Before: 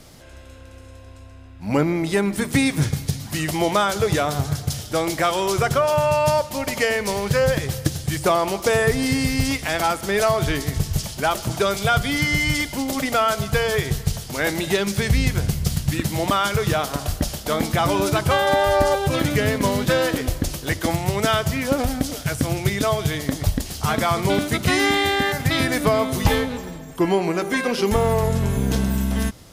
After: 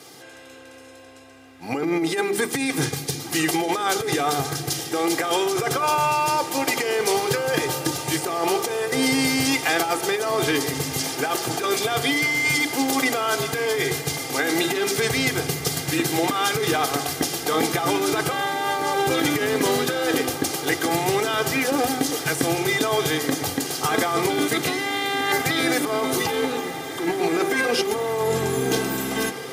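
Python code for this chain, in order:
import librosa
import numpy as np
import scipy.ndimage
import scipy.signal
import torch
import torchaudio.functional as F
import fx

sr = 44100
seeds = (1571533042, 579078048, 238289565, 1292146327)

p1 = scipy.signal.sosfilt(scipy.signal.butter(4, 160.0, 'highpass', fs=sr, output='sos'), x)
p2 = fx.hum_notches(p1, sr, base_hz=50, count=8)
p3 = p2 + 0.73 * np.pad(p2, (int(2.5 * sr / 1000.0), 0))[:len(p2)]
p4 = fx.over_compress(p3, sr, threshold_db=-22.0, ratio=-1.0)
y = p4 + fx.echo_diffused(p4, sr, ms=1576, feedback_pct=71, wet_db=-13.0, dry=0)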